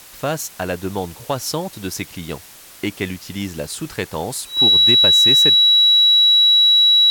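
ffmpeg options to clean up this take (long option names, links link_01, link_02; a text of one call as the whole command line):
ffmpeg -i in.wav -af "bandreject=frequency=3900:width=30,afwtdn=0.0089" out.wav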